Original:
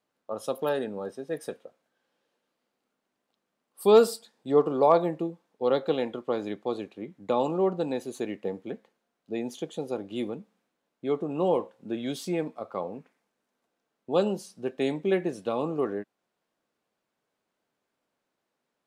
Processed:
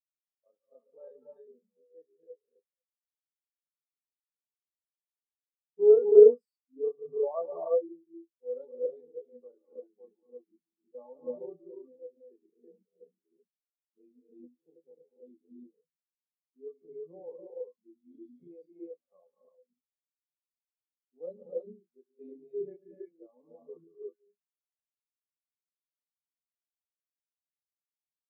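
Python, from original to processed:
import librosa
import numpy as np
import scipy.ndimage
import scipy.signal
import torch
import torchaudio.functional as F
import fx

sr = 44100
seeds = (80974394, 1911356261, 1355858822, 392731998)

y = fx.dereverb_blind(x, sr, rt60_s=1.3)
y = fx.rev_gated(y, sr, seeds[0], gate_ms=250, shape='rising', drr_db=-1.5)
y = fx.stretch_grains(y, sr, factor=1.5, grain_ms=72.0)
y = fx.spectral_expand(y, sr, expansion=2.5)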